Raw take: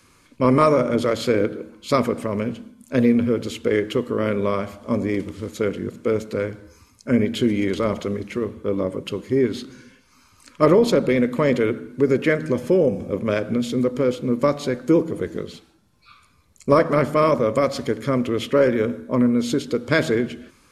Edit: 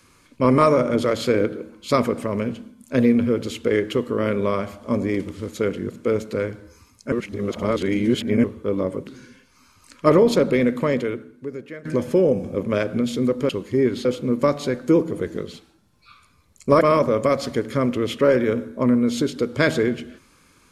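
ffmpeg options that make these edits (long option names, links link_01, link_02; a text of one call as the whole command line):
ffmpeg -i in.wav -filter_complex "[0:a]asplit=8[link_01][link_02][link_03][link_04][link_05][link_06][link_07][link_08];[link_01]atrim=end=7.122[link_09];[link_02]atrim=start=7.118:end=8.442,asetpts=PTS-STARTPTS,areverse[link_10];[link_03]atrim=start=8.438:end=9.072[link_11];[link_04]atrim=start=9.628:end=12.41,asetpts=PTS-STARTPTS,afade=type=out:start_time=1.672:duration=1.11:curve=qua:silence=0.125893[link_12];[link_05]atrim=start=12.41:end=14.052,asetpts=PTS-STARTPTS,afade=type=in:duration=0.004:curve=hsin:silence=0.125893[link_13];[link_06]atrim=start=9.068:end=9.632[link_14];[link_07]atrim=start=14.048:end=16.812[link_15];[link_08]atrim=start=17.128[link_16];[link_09][link_10]acrossfade=duration=0.004:curve1=hsin:curve2=hsin[link_17];[link_17][link_11]acrossfade=duration=0.004:curve1=hsin:curve2=hsin[link_18];[link_12][link_13]concat=n=2:v=0:a=1[link_19];[link_18][link_19]acrossfade=duration=0.004:curve1=hsin:curve2=hsin[link_20];[link_20][link_14]acrossfade=duration=0.004:curve1=hsin:curve2=hsin[link_21];[link_21][link_15]acrossfade=duration=0.004:curve1=hsin:curve2=hsin[link_22];[link_22][link_16]acrossfade=duration=0.004:curve1=hsin:curve2=hsin" out.wav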